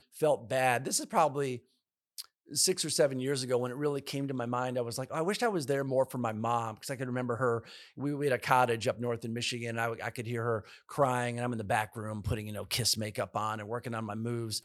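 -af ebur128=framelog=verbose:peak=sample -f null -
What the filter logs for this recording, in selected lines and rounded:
Integrated loudness:
  I:         -31.9 LUFS
  Threshold: -42.1 LUFS
Loudness range:
  LRA:         2.5 LU
  Threshold: -52.2 LUFS
  LRA low:   -33.4 LUFS
  LRA high:  -30.9 LUFS
Sample peak:
  Peak:       -9.0 dBFS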